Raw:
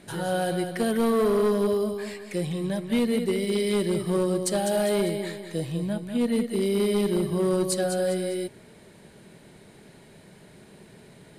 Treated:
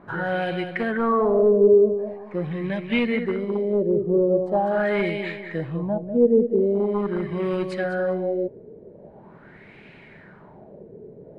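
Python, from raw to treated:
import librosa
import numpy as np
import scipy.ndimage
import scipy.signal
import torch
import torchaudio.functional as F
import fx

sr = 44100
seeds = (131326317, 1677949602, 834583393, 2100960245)

y = fx.rider(x, sr, range_db=10, speed_s=2.0)
y = fx.filter_lfo_lowpass(y, sr, shape='sine', hz=0.43, low_hz=440.0, high_hz=2500.0, q=4.1)
y = y * 10.0 ** (-1.0 / 20.0)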